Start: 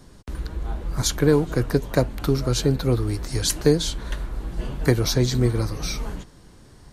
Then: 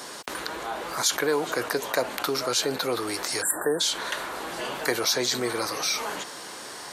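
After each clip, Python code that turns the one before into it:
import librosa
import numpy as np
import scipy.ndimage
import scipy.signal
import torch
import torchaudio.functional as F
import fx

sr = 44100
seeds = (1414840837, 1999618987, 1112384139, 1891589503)

y = scipy.signal.sosfilt(scipy.signal.butter(2, 650.0, 'highpass', fs=sr, output='sos'), x)
y = fx.spec_erase(y, sr, start_s=3.42, length_s=0.38, low_hz=1900.0, high_hz=7200.0)
y = fx.env_flatten(y, sr, amount_pct=50)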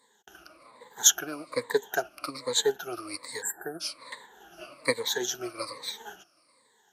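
y = fx.spec_ripple(x, sr, per_octave=0.99, drift_hz=-1.2, depth_db=21)
y = fx.upward_expand(y, sr, threshold_db=-35.0, expansion=2.5)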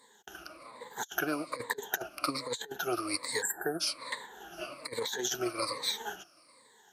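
y = fx.over_compress(x, sr, threshold_db=-33.0, ratio=-0.5)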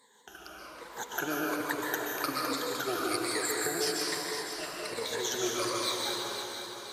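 y = fx.echo_feedback(x, sr, ms=509, feedback_pct=49, wet_db=-8)
y = fx.rev_plate(y, sr, seeds[0], rt60_s=2.0, hf_ratio=0.85, predelay_ms=115, drr_db=-2.0)
y = y * librosa.db_to_amplitude(-2.0)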